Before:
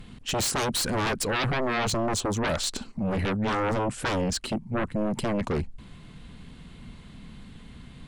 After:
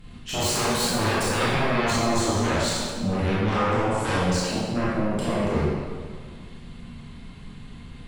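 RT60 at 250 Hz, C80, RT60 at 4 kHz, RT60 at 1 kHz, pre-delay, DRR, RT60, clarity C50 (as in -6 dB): 1.8 s, -0.5 dB, 1.3 s, 1.8 s, 19 ms, -8.5 dB, 1.8 s, -3.0 dB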